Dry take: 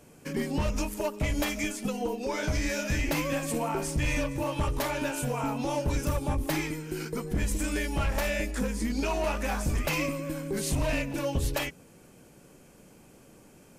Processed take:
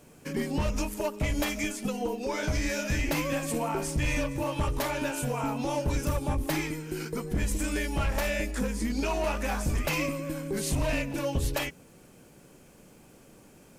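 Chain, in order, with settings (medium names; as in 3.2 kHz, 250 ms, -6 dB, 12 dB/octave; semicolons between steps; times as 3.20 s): added noise pink -68 dBFS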